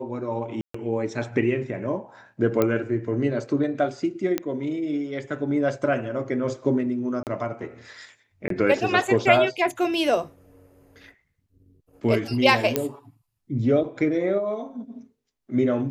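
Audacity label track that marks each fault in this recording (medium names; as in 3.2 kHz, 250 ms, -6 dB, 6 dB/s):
0.610000	0.740000	dropout 134 ms
2.620000	2.620000	pop -9 dBFS
4.380000	4.380000	pop -10 dBFS
7.230000	7.270000	dropout 38 ms
8.480000	8.500000	dropout 23 ms
12.760000	12.760000	pop -6 dBFS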